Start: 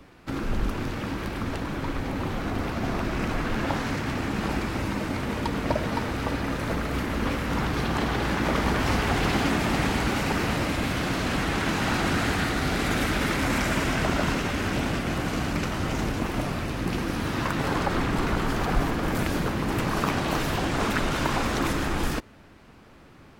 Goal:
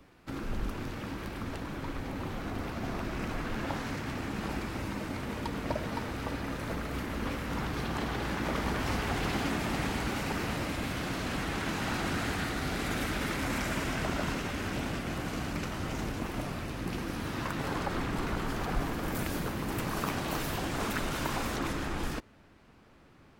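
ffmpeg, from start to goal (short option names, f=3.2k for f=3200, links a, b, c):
-af "asetnsamples=n=441:p=0,asendcmd='18.91 highshelf g 11.5;21.56 highshelf g -2',highshelf=f=9.8k:g=4,volume=-7.5dB"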